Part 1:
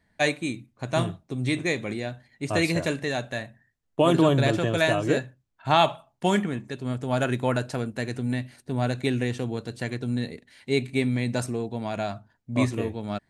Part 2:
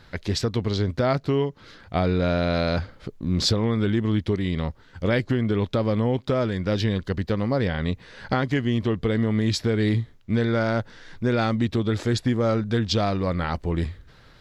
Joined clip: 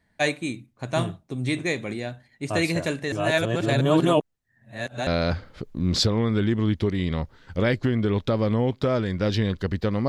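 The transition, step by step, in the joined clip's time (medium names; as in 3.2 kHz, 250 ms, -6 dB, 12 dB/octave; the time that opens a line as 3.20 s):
part 1
3.12–5.07 s: reverse
5.07 s: go over to part 2 from 2.53 s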